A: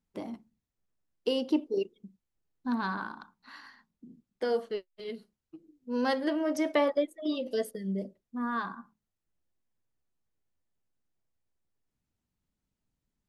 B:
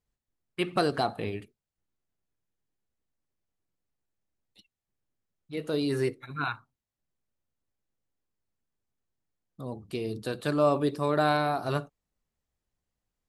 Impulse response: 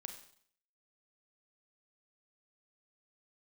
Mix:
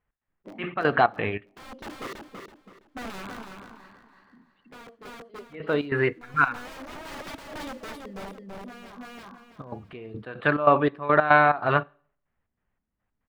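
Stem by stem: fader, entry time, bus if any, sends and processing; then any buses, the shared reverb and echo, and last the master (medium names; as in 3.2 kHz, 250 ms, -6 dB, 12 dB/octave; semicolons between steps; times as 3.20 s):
-1.0 dB, 0.30 s, send -22.5 dB, echo send -5 dB, integer overflow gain 28.5 dB; treble shelf 6 kHz -5 dB; auto duck -14 dB, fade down 1.90 s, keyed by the second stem
+2.5 dB, 0.00 s, send -19 dB, no echo send, FFT filter 360 Hz 0 dB, 1.8 kHz +14 dB, 3.1 kHz +7 dB, 5.8 kHz -19 dB; trance gate "x.xx..x.x" 142 bpm -12 dB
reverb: on, RT60 0.60 s, pre-delay 31 ms
echo: feedback delay 329 ms, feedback 32%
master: treble shelf 3 kHz -7 dB; tape noise reduction on one side only decoder only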